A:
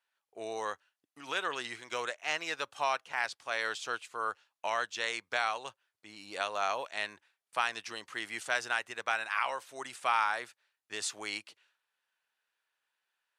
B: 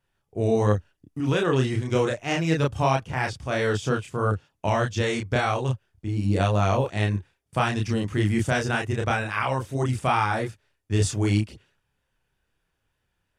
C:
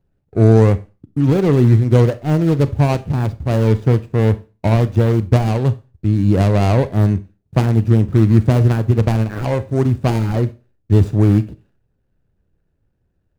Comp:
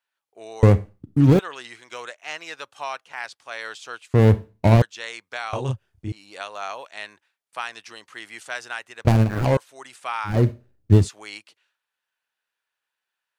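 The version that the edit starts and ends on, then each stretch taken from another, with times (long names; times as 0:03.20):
A
0:00.63–0:01.39: punch in from C
0:04.14–0:04.82: punch in from C
0:05.53–0:06.12: punch in from B
0:09.05–0:09.57: punch in from C
0:10.32–0:11.01: punch in from C, crossfade 0.16 s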